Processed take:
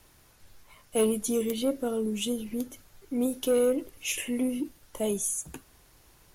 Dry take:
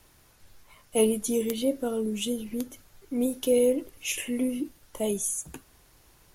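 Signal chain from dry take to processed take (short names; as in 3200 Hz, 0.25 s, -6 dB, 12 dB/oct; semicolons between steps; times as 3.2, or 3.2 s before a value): soft clip -17 dBFS, distortion -18 dB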